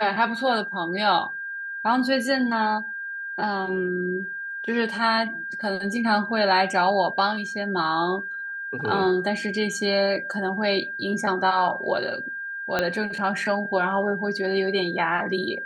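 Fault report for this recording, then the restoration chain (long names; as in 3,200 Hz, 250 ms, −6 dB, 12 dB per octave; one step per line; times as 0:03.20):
whistle 1,600 Hz −30 dBFS
0:12.79: click −9 dBFS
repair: click removal
notch filter 1,600 Hz, Q 30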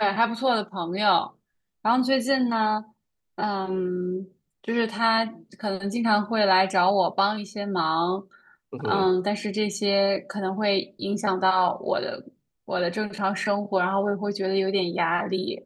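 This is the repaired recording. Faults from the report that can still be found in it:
0:12.79: click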